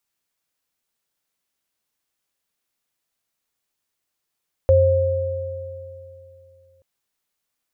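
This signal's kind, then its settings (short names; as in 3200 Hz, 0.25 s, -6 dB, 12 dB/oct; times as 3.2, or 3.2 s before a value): sine partials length 2.13 s, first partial 90 Hz, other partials 533 Hz, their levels 4 dB, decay 2.82 s, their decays 2.85 s, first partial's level -15 dB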